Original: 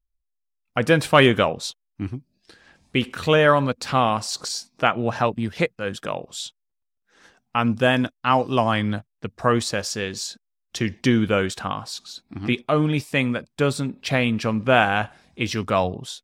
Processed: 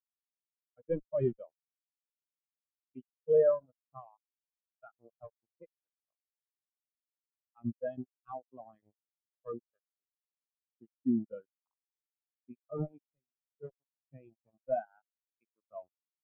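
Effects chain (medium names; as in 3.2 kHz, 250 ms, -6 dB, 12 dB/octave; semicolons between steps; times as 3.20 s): Chebyshev shaper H 3 -19 dB, 7 -19 dB, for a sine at -2.5 dBFS; fuzz box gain 41 dB, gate -41 dBFS; 13.10–13.63 s: compression 6:1, threshold -25 dBFS, peak gain reduction 8.5 dB; spectral contrast expander 4:1; trim -7 dB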